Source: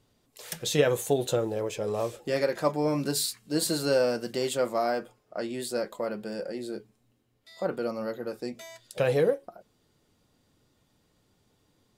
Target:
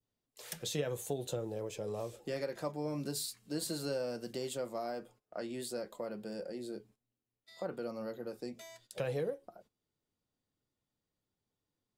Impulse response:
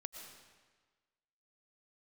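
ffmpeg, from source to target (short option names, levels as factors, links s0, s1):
-filter_complex "[0:a]acrossover=split=120[s0][s1];[s1]acompressor=threshold=0.0251:ratio=2[s2];[s0][s2]amix=inputs=2:normalize=0,agate=range=0.178:threshold=0.00178:ratio=16:detection=peak,adynamicequalizer=threshold=0.00355:dfrequency=1600:dqfactor=0.74:tfrequency=1600:tqfactor=0.74:attack=5:release=100:ratio=0.375:range=2.5:mode=cutabove:tftype=bell,volume=0.531"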